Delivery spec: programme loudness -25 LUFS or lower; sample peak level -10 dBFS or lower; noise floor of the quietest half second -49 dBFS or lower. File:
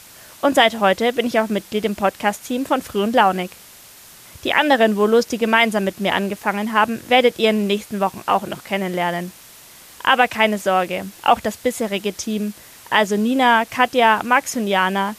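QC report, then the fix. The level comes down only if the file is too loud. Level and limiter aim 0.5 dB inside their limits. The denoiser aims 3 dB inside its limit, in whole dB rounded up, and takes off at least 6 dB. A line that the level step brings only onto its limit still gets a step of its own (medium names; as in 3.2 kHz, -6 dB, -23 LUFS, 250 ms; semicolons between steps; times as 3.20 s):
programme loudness -18.5 LUFS: fail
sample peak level -2.0 dBFS: fail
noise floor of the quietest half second -44 dBFS: fail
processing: trim -7 dB; peak limiter -10.5 dBFS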